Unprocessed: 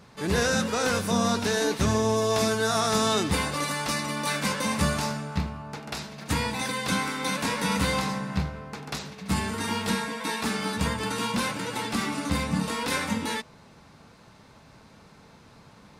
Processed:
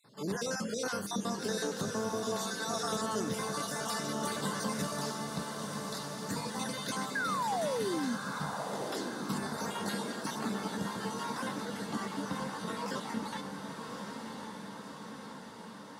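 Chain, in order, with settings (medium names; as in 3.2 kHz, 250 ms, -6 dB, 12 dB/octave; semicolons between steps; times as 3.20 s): random holes in the spectrogram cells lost 39%; treble shelf 5.5 kHz +2 dB, from 10.39 s -9.5 dB; 7.15–8.15 s: painted sound fall 220–1700 Hz -22 dBFS; compression, threshold -25 dBFS, peak gain reduction 8 dB; high-pass 130 Hz 24 dB/octave; peaking EQ 2.4 kHz -12.5 dB 0.38 oct; feedback comb 200 Hz, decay 0.42 s, harmonics all, mix 50%; echo that smears into a reverb 1125 ms, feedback 65%, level -5.5 dB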